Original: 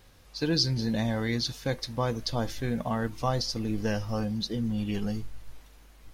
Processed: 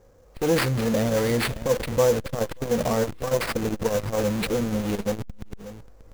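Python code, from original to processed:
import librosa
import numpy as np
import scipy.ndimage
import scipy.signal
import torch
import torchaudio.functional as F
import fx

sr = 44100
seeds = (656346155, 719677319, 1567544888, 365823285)

p1 = fx.env_lowpass(x, sr, base_hz=1300.0, full_db=-23.0)
p2 = fx.peak_eq(p1, sr, hz=500.0, db=13.5, octaves=0.51)
p3 = fx.schmitt(p2, sr, flips_db=-39.5)
p4 = p2 + (p3 * 10.0 ** (-3.5 / 20.0))
p5 = fx.sample_hold(p4, sr, seeds[0], rate_hz=6600.0, jitter_pct=20)
p6 = p5 + fx.echo_single(p5, sr, ms=585, db=-15.5, dry=0)
y = fx.transformer_sat(p6, sr, knee_hz=300.0)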